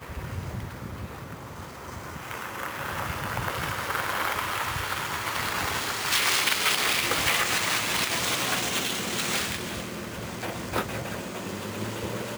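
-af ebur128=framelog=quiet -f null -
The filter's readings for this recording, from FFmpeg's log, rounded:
Integrated loudness:
  I:         -27.0 LUFS
  Threshold: -37.5 LUFS
Loudness range:
  LRA:        10.0 LU
  Threshold: -46.7 LUFS
  LRA low:   -33.5 LUFS
  LRA high:  -23.5 LUFS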